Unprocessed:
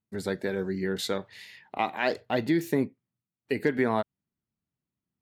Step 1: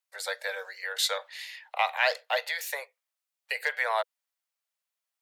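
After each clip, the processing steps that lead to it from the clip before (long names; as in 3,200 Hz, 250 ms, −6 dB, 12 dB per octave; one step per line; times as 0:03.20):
Butterworth high-pass 490 Hz 96 dB per octave
tilt shelving filter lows −6 dB, about 900 Hz
level +1.5 dB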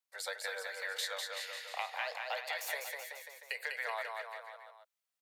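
downward compressor, threshold −31 dBFS, peak gain reduction 11.5 dB
on a send: bouncing-ball delay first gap 200 ms, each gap 0.9×, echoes 5
on the sum: level −4.5 dB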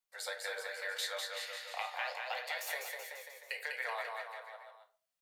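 flanger 0.73 Hz, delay 4.1 ms, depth 8.2 ms, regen +69%
rectangular room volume 280 cubic metres, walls furnished, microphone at 0.94 metres
level +3 dB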